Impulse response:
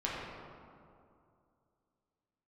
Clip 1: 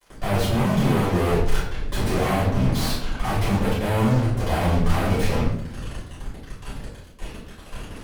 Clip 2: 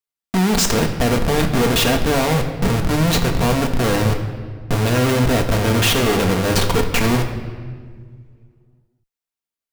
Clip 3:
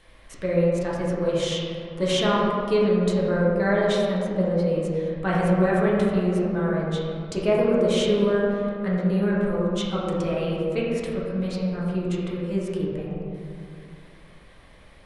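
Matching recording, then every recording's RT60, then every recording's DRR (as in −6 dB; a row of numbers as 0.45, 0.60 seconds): 3; 0.70, 1.7, 2.4 seconds; −11.0, 3.0, −6.5 decibels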